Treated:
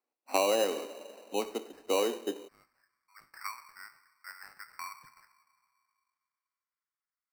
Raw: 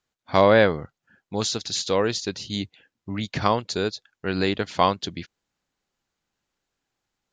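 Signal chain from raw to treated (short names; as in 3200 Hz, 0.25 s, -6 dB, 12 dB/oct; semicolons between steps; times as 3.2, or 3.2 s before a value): ladder low-pass 1300 Hz, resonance 25%; two-slope reverb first 0.52 s, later 2.4 s, from -17 dB, DRR 8 dB; compressor 10:1, threshold -24 dBFS, peak gain reduction 9 dB; steep high-pass 240 Hz 48 dB/oct, from 2.47 s 1200 Hz; sample-and-hold 13×; gain +1.5 dB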